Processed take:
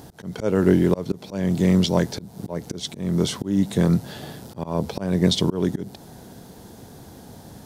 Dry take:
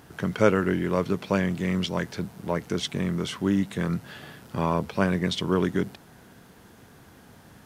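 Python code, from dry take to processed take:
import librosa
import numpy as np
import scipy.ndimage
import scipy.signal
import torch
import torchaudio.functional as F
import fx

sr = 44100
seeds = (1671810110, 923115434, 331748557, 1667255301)

y = fx.band_shelf(x, sr, hz=1800.0, db=-9.5, octaves=1.7)
y = fx.auto_swell(y, sr, attack_ms=274.0)
y = F.gain(torch.from_numpy(y), 9.0).numpy()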